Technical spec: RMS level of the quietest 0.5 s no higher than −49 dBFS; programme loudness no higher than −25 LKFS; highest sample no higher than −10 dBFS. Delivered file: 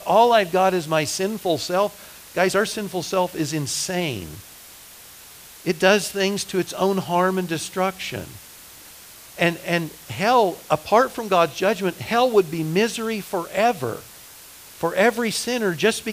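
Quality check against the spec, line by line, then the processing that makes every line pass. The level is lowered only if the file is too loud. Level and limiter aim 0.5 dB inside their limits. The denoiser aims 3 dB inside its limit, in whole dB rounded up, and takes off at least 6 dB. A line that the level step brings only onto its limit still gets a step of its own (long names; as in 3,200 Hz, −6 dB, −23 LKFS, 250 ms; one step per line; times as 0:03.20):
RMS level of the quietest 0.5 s −44 dBFS: out of spec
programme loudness −21.5 LKFS: out of spec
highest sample −3.0 dBFS: out of spec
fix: broadband denoise 6 dB, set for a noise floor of −44 dBFS
level −4 dB
brickwall limiter −10.5 dBFS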